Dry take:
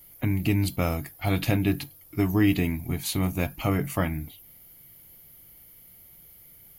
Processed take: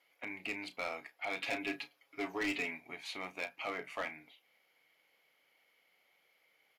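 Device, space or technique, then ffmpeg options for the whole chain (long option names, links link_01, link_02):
megaphone: -filter_complex "[0:a]equalizer=frequency=340:width_type=o:width=0.21:gain=-5.5,asettb=1/sr,asplit=3[link_01][link_02][link_03];[link_01]atrim=end=1.434[link_04];[link_02]atrim=start=1.43:end=2.8,asetpts=PTS-STARTPTS,afade=type=in:duration=0.004:curve=qsin,afade=type=out:start_time=1.366:duration=0.004:curve=qsin,aecho=1:1:7.2:0.88,atrim=end_sample=60417[link_05];[link_03]atrim=start=2.796[link_06];[link_04][link_05]acrossfade=duration=0.004:curve1=hsin:curve2=qsin[link_07];[link_07][link_06]acrossfade=duration=0.004:curve1=qsin:curve2=hsin,highpass=450,lowpass=3500,bass=frequency=250:gain=-9,treble=frequency=4000:gain=1,equalizer=frequency=2300:width_type=o:width=0.5:gain=6.5,asoftclip=type=hard:threshold=-23dB,asplit=2[link_08][link_09];[link_09]adelay=33,volume=-13dB[link_10];[link_08][link_10]amix=inputs=2:normalize=0,volume=-7.5dB"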